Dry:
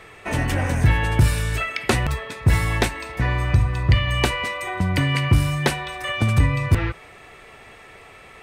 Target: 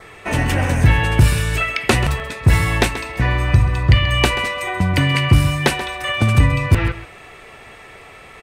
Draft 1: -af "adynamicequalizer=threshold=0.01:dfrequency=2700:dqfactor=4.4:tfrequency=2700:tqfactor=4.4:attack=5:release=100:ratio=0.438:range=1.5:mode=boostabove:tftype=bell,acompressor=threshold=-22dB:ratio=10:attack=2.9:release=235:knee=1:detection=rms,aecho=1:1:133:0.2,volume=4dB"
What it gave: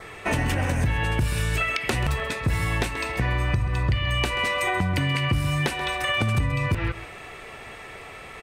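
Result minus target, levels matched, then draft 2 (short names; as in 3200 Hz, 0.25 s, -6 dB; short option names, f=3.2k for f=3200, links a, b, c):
compressor: peak gain reduction +13 dB
-af "adynamicequalizer=threshold=0.01:dfrequency=2700:dqfactor=4.4:tfrequency=2700:tqfactor=4.4:attack=5:release=100:ratio=0.438:range=1.5:mode=boostabove:tftype=bell,aecho=1:1:133:0.2,volume=4dB"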